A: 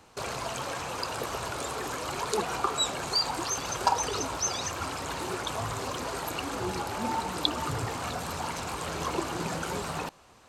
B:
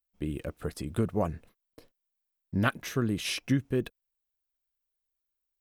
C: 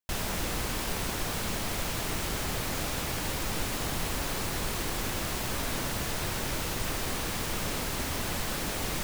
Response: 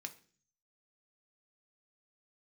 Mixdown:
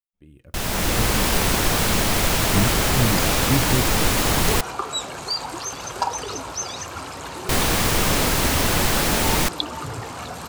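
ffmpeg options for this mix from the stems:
-filter_complex "[0:a]adelay=2150,volume=0.316[s0];[1:a]asubboost=boost=11:cutoff=210,volume=0.106,asplit=2[s1][s2];[s2]volume=0.708[s3];[2:a]adelay=450,volume=1.19,asplit=3[s4][s5][s6];[s4]atrim=end=4.61,asetpts=PTS-STARTPTS,afade=t=out:st=4.606:d=0.004:c=hsin[s7];[s5]atrim=start=4.61:end=7.49,asetpts=PTS-STARTPTS,volume=0[s8];[s6]atrim=start=7.49,asetpts=PTS-STARTPTS,afade=t=in:d=0.004:c=hsin[s9];[s7][s8][s9]concat=n=3:v=0:a=1[s10];[3:a]atrim=start_sample=2205[s11];[s3][s11]afir=irnorm=-1:irlink=0[s12];[s0][s1][s10][s12]amix=inputs=4:normalize=0,dynaudnorm=f=210:g=7:m=3.55"

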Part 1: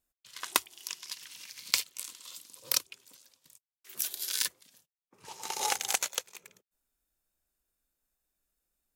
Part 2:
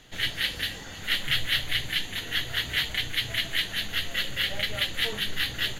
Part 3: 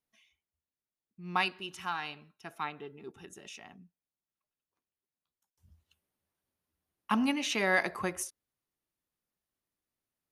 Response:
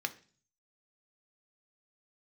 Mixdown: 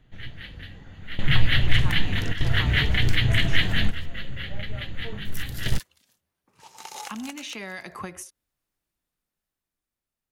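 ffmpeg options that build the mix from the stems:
-filter_complex "[0:a]equalizer=f=410:t=o:w=0.77:g=-6,adelay=1350,volume=0.473,asplit=3[s0][s1][s2];[s0]atrim=end=4.06,asetpts=PTS-STARTPTS,afade=t=out:st=4.056:d=0.004:c=hsin[s3];[s1]atrim=start=4.06:end=5.25,asetpts=PTS-STARTPTS,volume=0[s4];[s2]atrim=start=5.25,asetpts=PTS-STARTPTS,afade=t=in:d=0.004:c=hsin[s5];[s3][s4][s5]concat=n=3:v=0:a=1[s6];[1:a]bass=f=250:g=12,treble=f=4000:g=-13,volume=1.33[s7];[2:a]equalizer=f=560:w=0.38:g=-4,acrossover=split=190|3000[s8][s9][s10];[s9]acompressor=threshold=0.0178:ratio=6[s11];[s8][s11][s10]amix=inputs=3:normalize=0,volume=1.33,asplit=2[s12][s13];[s13]apad=whole_len=255718[s14];[s7][s14]sidechaingate=range=0.224:threshold=0.00112:ratio=16:detection=peak[s15];[s6][s12]amix=inputs=2:normalize=0,acompressor=threshold=0.0141:ratio=5,volume=1[s16];[s15][s16]amix=inputs=2:normalize=0,highshelf=f=4100:g=-6,dynaudnorm=f=230:g=11:m=1.88"

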